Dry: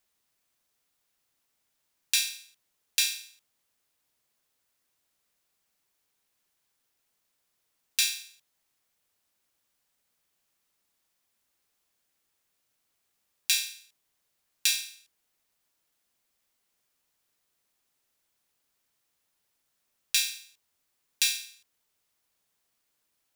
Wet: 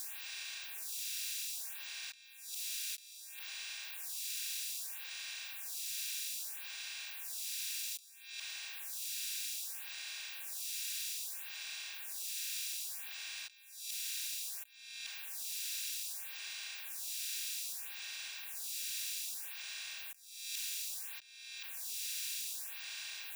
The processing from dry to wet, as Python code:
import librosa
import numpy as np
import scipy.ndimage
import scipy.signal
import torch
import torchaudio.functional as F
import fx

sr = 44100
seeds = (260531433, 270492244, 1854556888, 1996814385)

y = fx.bin_compress(x, sr, power=0.4)
y = fx.over_compress(y, sr, threshold_db=-42.0, ratio=-1.0)
y = fx.stagger_phaser(y, sr, hz=0.62)
y = y * 10.0 ** (1.0 / 20.0)